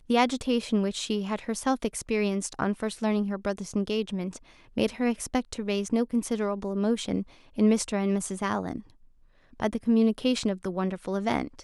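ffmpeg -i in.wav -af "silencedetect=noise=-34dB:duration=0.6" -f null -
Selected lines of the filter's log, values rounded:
silence_start: 8.80
silence_end: 9.60 | silence_duration: 0.80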